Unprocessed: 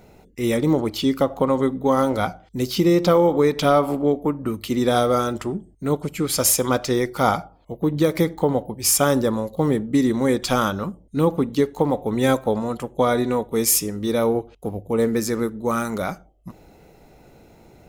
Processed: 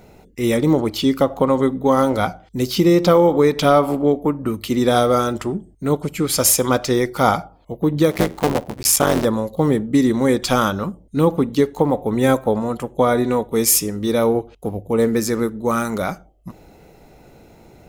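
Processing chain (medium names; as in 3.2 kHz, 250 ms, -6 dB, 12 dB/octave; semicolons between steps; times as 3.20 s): 8.11–9.25 s: cycle switcher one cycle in 3, muted; 11.71–13.25 s: dynamic bell 4.4 kHz, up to -5 dB, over -43 dBFS, Q 0.89; trim +3 dB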